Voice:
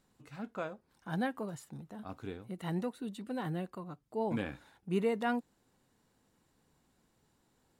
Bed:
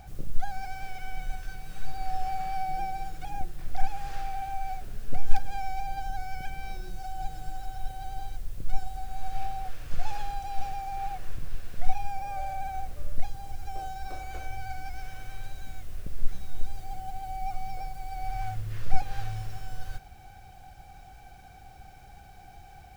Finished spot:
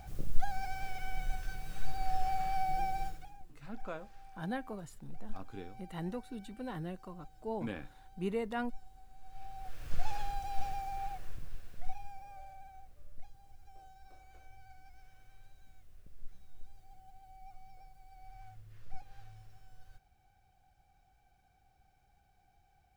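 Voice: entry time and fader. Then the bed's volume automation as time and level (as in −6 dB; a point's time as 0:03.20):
3.30 s, −4.0 dB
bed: 0:03.06 −2 dB
0:03.38 −21 dB
0:09.21 −21 dB
0:09.87 −4 dB
0:10.78 −4 dB
0:12.81 −20 dB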